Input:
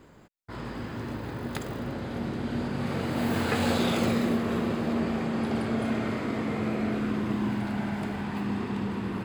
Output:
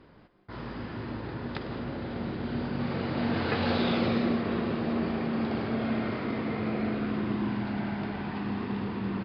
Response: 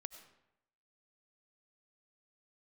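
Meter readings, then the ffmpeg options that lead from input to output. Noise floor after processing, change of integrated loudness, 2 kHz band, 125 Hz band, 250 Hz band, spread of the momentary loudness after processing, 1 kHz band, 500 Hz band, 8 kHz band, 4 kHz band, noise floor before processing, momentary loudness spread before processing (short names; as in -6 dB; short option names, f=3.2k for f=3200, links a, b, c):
-54 dBFS, -1.5 dB, -1.5 dB, -1.5 dB, -1.5 dB, 10 LU, -1.5 dB, -1.0 dB, under -25 dB, -1.5 dB, -53 dBFS, 10 LU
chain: -filter_complex "[0:a]aresample=11025,aresample=44100[a];[1:a]atrim=start_sample=2205,atrim=end_sample=6174,asetrate=24255,aresample=44100[b];[a][b]afir=irnorm=-1:irlink=0"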